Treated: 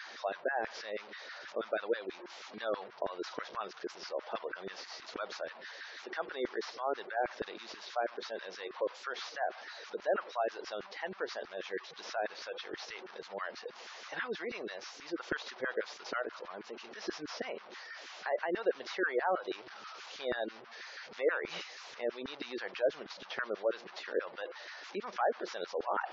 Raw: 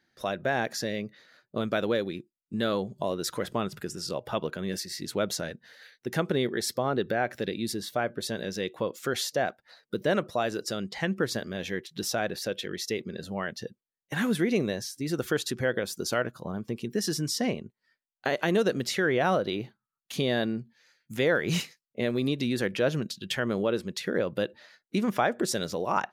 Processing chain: delta modulation 32 kbps, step -34 dBFS; LFO high-pass saw down 6.2 Hz 350–1600 Hz; spectral gate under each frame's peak -25 dB strong; gain -9 dB

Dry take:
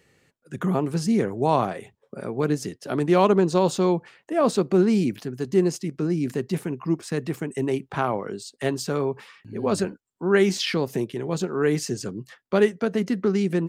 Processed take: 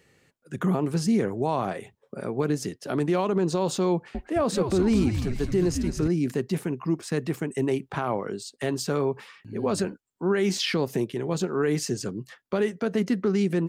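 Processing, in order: limiter -15.5 dBFS, peak gain reduction 10 dB; 3.93–6.08 frequency-shifting echo 0.215 s, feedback 56%, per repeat -120 Hz, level -6 dB

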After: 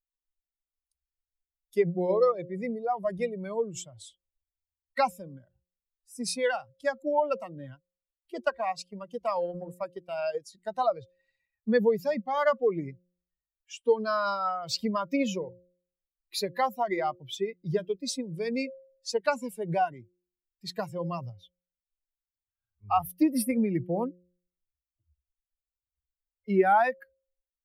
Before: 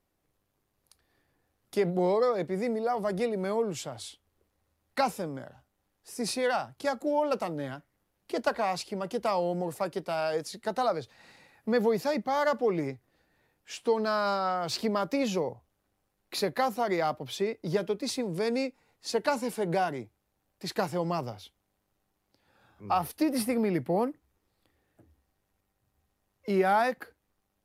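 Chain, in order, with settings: per-bin expansion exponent 2; bell 3800 Hz -2 dB 0.32 oct; de-hum 178.3 Hz, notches 3; 7.74–10.55 transient shaper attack -1 dB, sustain -6 dB; gain +5.5 dB

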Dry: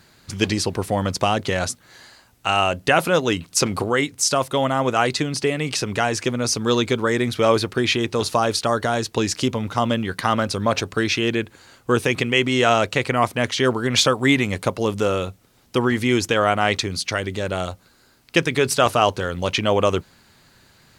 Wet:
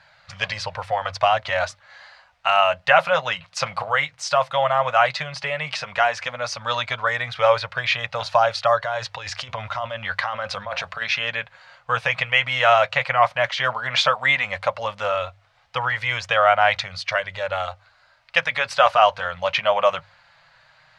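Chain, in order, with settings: 8.84–11.02 negative-ratio compressor -25 dBFS, ratio -1; notches 50/100 Hz; flange 0.12 Hz, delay 1.2 ms, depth 5.3 ms, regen -49%; EQ curve 150 Hz 0 dB, 210 Hz -13 dB, 360 Hz -25 dB, 570 Hz +11 dB, 2000 Hz +12 dB, 4700 Hz +4 dB, 12000 Hz -19 dB; gain -4.5 dB

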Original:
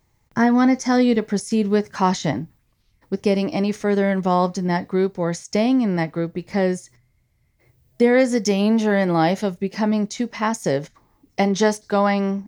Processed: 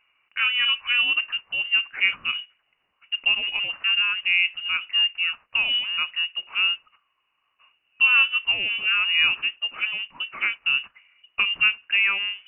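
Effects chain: G.711 law mismatch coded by mu; steep high-pass 280 Hz 48 dB/oct; air absorption 490 m; inverted band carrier 3200 Hz

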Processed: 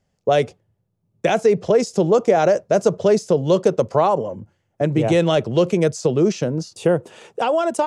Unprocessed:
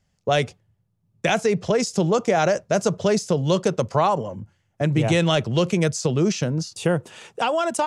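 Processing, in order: bell 450 Hz +9.5 dB 2 oct; gain -3.5 dB

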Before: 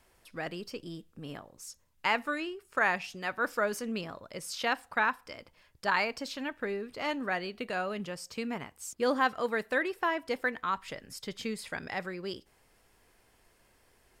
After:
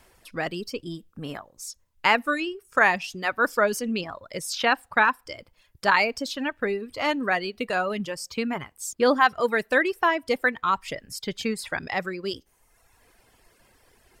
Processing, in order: reverb removal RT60 1.1 s; gain +8.5 dB

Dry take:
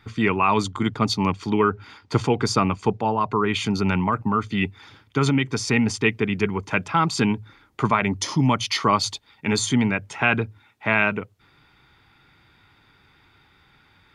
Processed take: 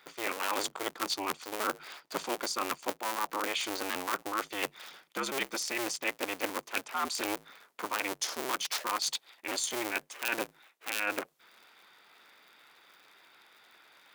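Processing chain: cycle switcher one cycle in 2, inverted; HPF 450 Hz 12 dB/oct; high shelf 8500 Hz +10 dB; reverse; compressor 6:1, threshold -28 dBFS, peak gain reduction 14.5 dB; reverse; gain -1.5 dB

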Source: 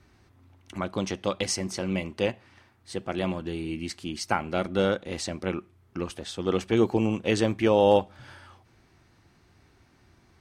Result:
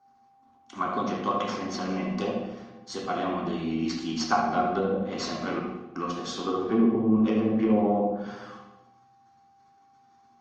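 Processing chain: tracing distortion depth 0.1 ms; HPF 150 Hz 12 dB/oct; treble ducked by the level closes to 440 Hz, closed at -20 dBFS; gate -60 dBFS, range -14 dB; LPF 6800 Hz 24 dB/oct; low shelf 340 Hz -10 dB; notches 50/100/150/200/250/300 Hz; small resonant body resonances 230/730/1100 Hz, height 14 dB, ringing for 70 ms; whine 790 Hz -61 dBFS; analogue delay 74 ms, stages 2048, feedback 33%, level -8 dB; reverb RT60 1.1 s, pre-delay 3 ms, DRR -0.5 dB; gain -2.5 dB; Opus 32 kbps 48000 Hz

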